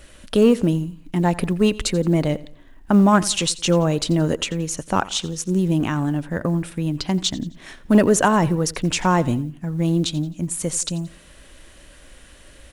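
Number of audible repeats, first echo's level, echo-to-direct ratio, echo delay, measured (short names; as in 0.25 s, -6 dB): 2, -19.5 dB, -19.0 dB, 87 ms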